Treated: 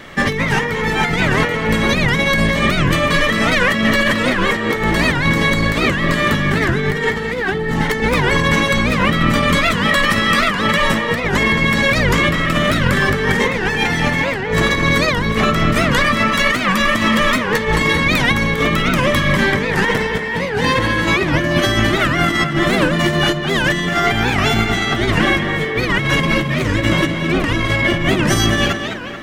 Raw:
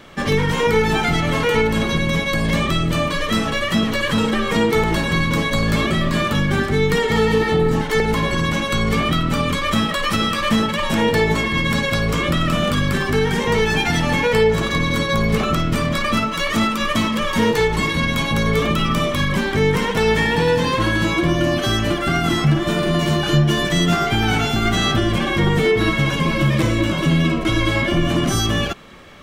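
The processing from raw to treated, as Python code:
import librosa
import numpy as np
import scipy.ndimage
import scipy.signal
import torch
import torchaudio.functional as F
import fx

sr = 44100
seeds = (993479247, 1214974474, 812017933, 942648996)

y = fx.peak_eq(x, sr, hz=1900.0, db=10.0, octaves=0.27)
y = fx.over_compress(y, sr, threshold_db=-19.0, ratio=-0.5)
y = fx.echo_tape(y, sr, ms=217, feedback_pct=61, wet_db=-6.5, lp_hz=4200.0, drive_db=3.0, wow_cents=10)
y = fx.record_warp(y, sr, rpm=78.0, depth_cents=250.0)
y = y * 10.0 ** (3.0 / 20.0)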